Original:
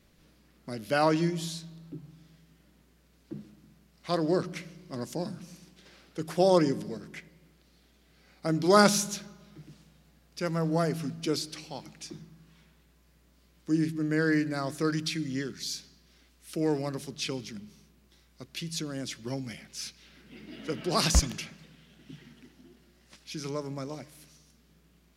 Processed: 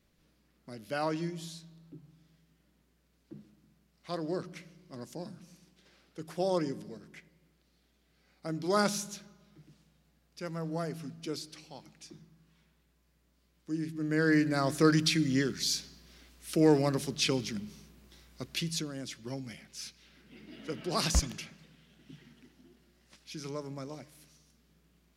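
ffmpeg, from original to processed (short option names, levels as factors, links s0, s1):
-af "volume=1.68,afade=t=in:st=13.85:d=0.97:silence=0.237137,afade=t=out:st=18.52:d=0.4:silence=0.354813"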